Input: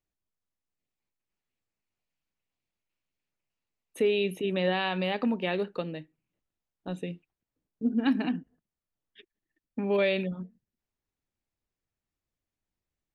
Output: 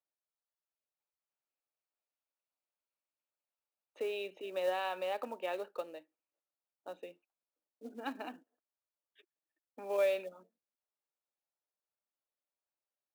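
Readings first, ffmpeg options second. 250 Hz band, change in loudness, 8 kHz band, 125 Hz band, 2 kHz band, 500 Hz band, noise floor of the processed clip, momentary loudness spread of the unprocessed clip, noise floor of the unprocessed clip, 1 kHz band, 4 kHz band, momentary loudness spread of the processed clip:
-20.5 dB, -8.5 dB, no reading, under -30 dB, -10.5 dB, -6.5 dB, under -85 dBFS, 15 LU, under -85 dBFS, -4.5 dB, -11.5 dB, 19 LU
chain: -af "highpass=f=360:w=0.5412,highpass=f=360:w=1.3066,equalizer=f=400:t=q:w=4:g=-4,equalizer=f=590:t=q:w=4:g=6,equalizer=f=870:t=q:w=4:g=4,equalizer=f=1300:t=q:w=4:g=4,equalizer=f=2000:t=q:w=4:g=-6,equalizer=f=3300:t=q:w=4:g=-6,lowpass=f=4500:w=0.5412,lowpass=f=4500:w=1.3066,acrusher=bits=6:mode=log:mix=0:aa=0.000001,volume=0.398"

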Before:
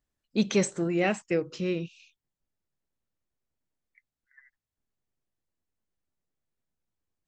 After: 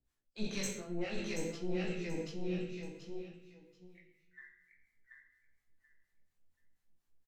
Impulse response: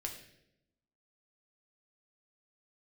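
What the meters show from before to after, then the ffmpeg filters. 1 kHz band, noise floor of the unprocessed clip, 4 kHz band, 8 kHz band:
-13.5 dB, under -85 dBFS, -6.0 dB, -6.5 dB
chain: -filter_complex "[0:a]acrossover=split=680[s0][s1];[s0]aeval=exprs='val(0)*(1-1/2+1/2*cos(2*PI*4.2*n/s))':c=same[s2];[s1]aeval=exprs='val(0)*(1-1/2-1/2*cos(2*PI*4.2*n/s))':c=same[s3];[s2][s3]amix=inputs=2:normalize=0,acrossover=split=450|3000[s4][s5][s6];[s5]acompressor=threshold=0.00631:ratio=4[s7];[s4][s7][s6]amix=inputs=3:normalize=0,aeval=exprs='(tanh(12.6*val(0)+0.8)-tanh(0.8))/12.6':c=same,aecho=1:1:732|1464|2196:0.668|0.134|0.0267[s8];[1:a]atrim=start_sample=2205,asetrate=35721,aresample=44100[s9];[s8][s9]afir=irnorm=-1:irlink=0,areverse,acompressor=threshold=0.00631:ratio=4,areverse,flanger=delay=16:depth=6.3:speed=0.55,volume=3.98"

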